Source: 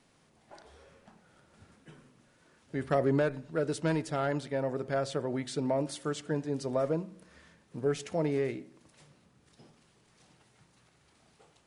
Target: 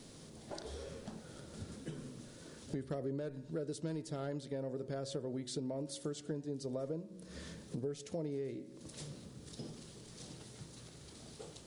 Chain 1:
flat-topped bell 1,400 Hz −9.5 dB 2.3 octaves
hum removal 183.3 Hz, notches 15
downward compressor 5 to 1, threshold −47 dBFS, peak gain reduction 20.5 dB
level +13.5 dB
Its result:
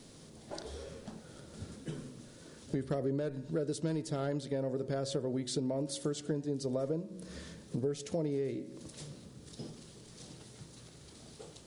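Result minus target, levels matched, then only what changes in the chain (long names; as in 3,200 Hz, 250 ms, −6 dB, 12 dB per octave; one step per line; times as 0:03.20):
downward compressor: peak gain reduction −5.5 dB
change: downward compressor 5 to 1, threshold −54 dBFS, peak gain reduction 26 dB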